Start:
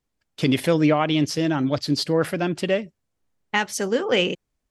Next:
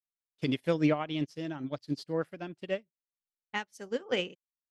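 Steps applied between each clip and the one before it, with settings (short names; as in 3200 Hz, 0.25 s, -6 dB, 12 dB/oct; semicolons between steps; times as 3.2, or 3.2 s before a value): upward expander 2.5:1, over -37 dBFS; gain -6 dB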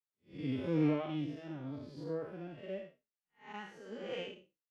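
time blur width 0.192 s; high shelf 3900 Hz -8.5 dB; endless flanger 3.8 ms -2.4 Hz; gain +1 dB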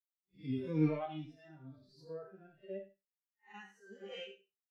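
per-bin expansion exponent 2; resonator bank C3 minor, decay 0.2 s; echo 0.101 s -18 dB; gain +12 dB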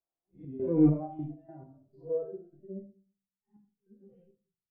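low-pass sweep 700 Hz -> 130 Hz, 2.03–3.06; step gate "xxx.xx..x.x.." 101 bpm -12 dB; reverb RT60 0.40 s, pre-delay 3 ms, DRR 4.5 dB; gain +5.5 dB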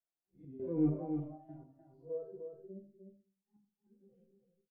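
echo 0.303 s -6.5 dB; gain -8.5 dB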